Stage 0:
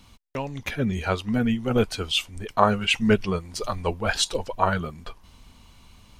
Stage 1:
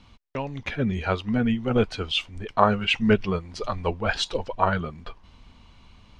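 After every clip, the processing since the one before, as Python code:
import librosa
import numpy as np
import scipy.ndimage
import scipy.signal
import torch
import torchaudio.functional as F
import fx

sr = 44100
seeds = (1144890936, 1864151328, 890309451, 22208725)

y = scipy.signal.sosfilt(scipy.signal.butter(2, 4100.0, 'lowpass', fs=sr, output='sos'), x)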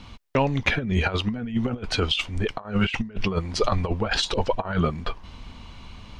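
y = fx.over_compress(x, sr, threshold_db=-28.0, ratio=-0.5)
y = F.gain(torch.from_numpy(y), 5.0).numpy()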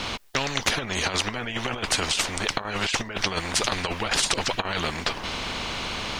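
y = fx.spectral_comp(x, sr, ratio=4.0)
y = F.gain(torch.from_numpy(y), 5.0).numpy()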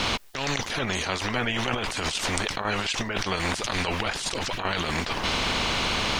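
y = fx.over_compress(x, sr, threshold_db=-30.0, ratio=-1.0)
y = F.gain(torch.from_numpy(y), 2.5).numpy()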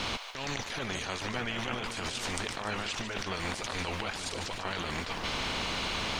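y = fx.echo_split(x, sr, split_hz=580.0, low_ms=437, high_ms=148, feedback_pct=52, wet_db=-8.5)
y = F.gain(torch.from_numpy(y), -8.0).numpy()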